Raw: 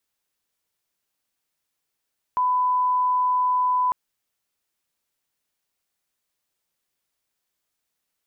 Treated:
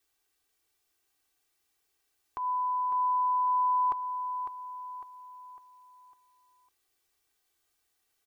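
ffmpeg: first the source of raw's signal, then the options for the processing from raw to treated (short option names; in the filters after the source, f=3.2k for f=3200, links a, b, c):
-f lavfi -i "sine=f=1000:d=1.55:r=44100,volume=0.06dB"
-filter_complex "[0:a]aecho=1:1:2.6:0.83,alimiter=level_in=2.5dB:limit=-24dB:level=0:latency=1:release=192,volume=-2.5dB,asplit=2[a][b];[b]aecho=0:1:553|1106|1659|2212|2765:0.376|0.165|0.0728|0.032|0.0141[c];[a][c]amix=inputs=2:normalize=0"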